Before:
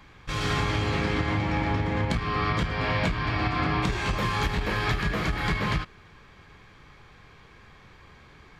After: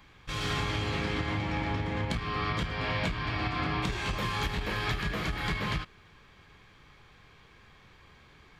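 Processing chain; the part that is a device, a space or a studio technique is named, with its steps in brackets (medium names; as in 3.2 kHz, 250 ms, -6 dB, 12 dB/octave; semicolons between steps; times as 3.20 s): presence and air boost (peaking EQ 3.2 kHz +3.5 dB 0.84 oct; treble shelf 9.2 kHz +6 dB); trim -5.5 dB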